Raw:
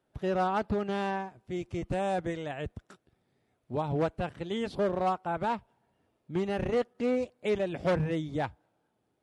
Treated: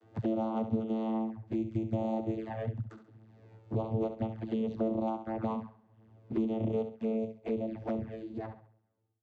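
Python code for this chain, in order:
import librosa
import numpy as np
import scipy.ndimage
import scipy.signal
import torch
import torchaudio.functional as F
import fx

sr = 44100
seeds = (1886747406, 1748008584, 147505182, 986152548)

y = fx.fade_out_tail(x, sr, length_s=2.75)
y = fx.room_flutter(y, sr, wall_m=11.5, rt60_s=0.39)
y = fx.vocoder(y, sr, bands=16, carrier='saw', carrier_hz=111.0)
y = fx.env_flanger(y, sr, rest_ms=11.8, full_db=-30.0)
y = fx.band_squash(y, sr, depth_pct=70)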